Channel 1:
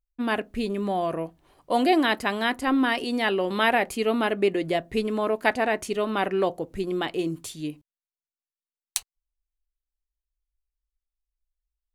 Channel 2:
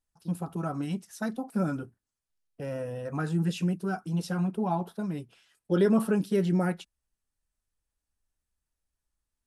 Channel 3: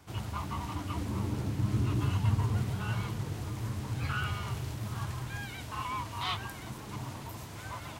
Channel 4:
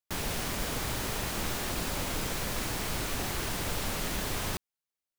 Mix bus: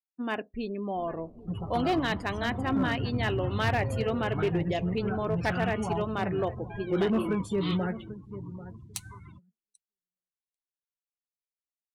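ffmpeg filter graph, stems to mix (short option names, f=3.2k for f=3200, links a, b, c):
-filter_complex "[0:a]volume=-6dB,asplit=2[a][b];[b]volume=-17dB[c];[1:a]adelay=1200,volume=-3.5dB,asplit=2[d][e];[e]volume=-14dB[f];[2:a]lowpass=9.3k,equalizer=f=610:w=0.85:g=-9,adelay=1400,volume=-2dB[g];[3:a]alimiter=level_in=3.5dB:limit=-24dB:level=0:latency=1:release=14,volume=-3.5dB,acrusher=samples=20:mix=1:aa=0.000001:lfo=1:lforange=12:lforate=2.6,adelay=850,volume=-13dB[h];[c][f]amix=inputs=2:normalize=0,aecho=0:1:791|1582|2373:1|0.18|0.0324[i];[a][d][g][h][i]amix=inputs=5:normalize=0,afftdn=nr=34:nf=-43,asoftclip=type=hard:threshold=-20dB"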